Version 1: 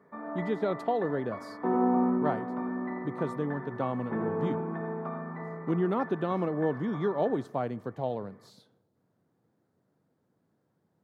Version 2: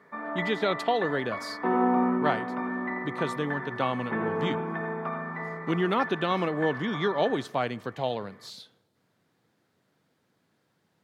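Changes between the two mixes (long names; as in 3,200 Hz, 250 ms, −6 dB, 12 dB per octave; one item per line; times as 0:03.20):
speech: add high-shelf EQ 4,600 Hz +10 dB
master: add parametric band 2,800 Hz +14.5 dB 2.2 octaves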